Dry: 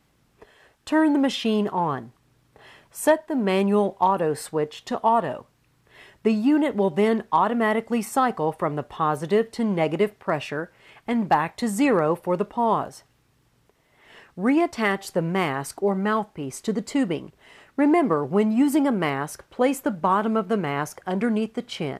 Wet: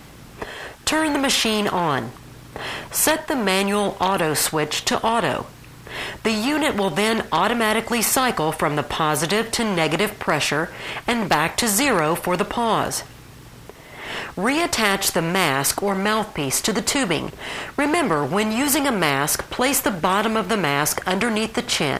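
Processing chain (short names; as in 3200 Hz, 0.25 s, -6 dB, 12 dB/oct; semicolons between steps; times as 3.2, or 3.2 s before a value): in parallel at -1 dB: limiter -20.5 dBFS, peak gain reduction 11.5 dB; on the sum: spectral compressor 2:1; gain +5.5 dB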